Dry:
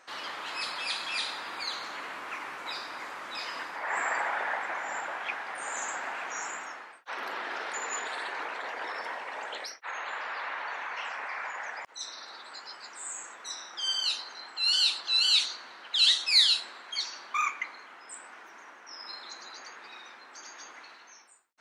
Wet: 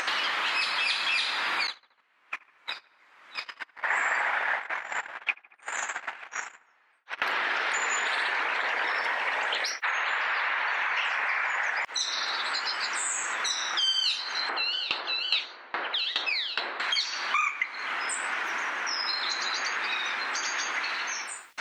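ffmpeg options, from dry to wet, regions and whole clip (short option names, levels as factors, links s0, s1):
-filter_complex "[0:a]asettb=1/sr,asplit=3[s0][s1][s2];[s0]atrim=end=1.674[s3];[s1]atrim=start=1.67:end=7.22,asetpts=PTS-STARTPTS,afade=t=in:d=0.004:c=qsin,afade=t=out:st=5.546:d=0.004:c=qsin,agate=range=0.00126:threshold=0.0224:ratio=16:release=100:detection=peak,asplit=2[s4][s5];[s5]adelay=74,lowpass=f=2400:p=1,volume=0.0708,asplit=2[s6][s7];[s7]adelay=74,lowpass=f=2400:p=1,volume=0.53,asplit=2[s8][s9];[s9]adelay=74,lowpass=f=2400:p=1,volume=0.53,asplit=2[s10][s11];[s11]adelay=74,lowpass=f=2400:p=1,volume=0.53[s12];[s4][s6][s8][s10][s12]amix=inputs=5:normalize=0,atrim=end_sample=244755[s13];[s2]atrim=start=7.216[s14];[s3][s13]acrossfade=d=0.004:c1=hsin:c2=qsin[s15];[s15][s14]acrossfade=d=0.004:c1=qsin:c2=hsin,asettb=1/sr,asplit=3[s16][s17][s18];[s16]atrim=end=14.494[s19];[s17]atrim=start=14.49:end=16.8,asetpts=PTS-STARTPTS,afade=t=in:d=0.004:c=qsin,afade=t=out:st=2.306:d=0.004:c=qsin,highpass=160,lowpass=3100,equalizer=f=460:w=0.56:g=13,aeval=exprs='val(0)*pow(10,-28*if(lt(mod(2.4*n/s,1),2*abs(2.4)/1000),1-mod(2.4*n/s,1)/(2*abs(2.4)/1000),(mod(2.4*n/s,1)-2*abs(2.4)/1000)/(1-2*abs(2.4)/1000))/20)':c=same[s20];[s18]atrim=start=16.796[s21];[s19][s20]acrossfade=d=0.004:c1=hsin:c2=qsin[s22];[s22][s21]acrossfade=d=0.004:c1=qsin:c2=hsin,acompressor=mode=upward:threshold=0.02:ratio=2.5,equalizer=f=2400:t=o:w=2:g=9.5,acompressor=threshold=0.0251:ratio=4,volume=2.11"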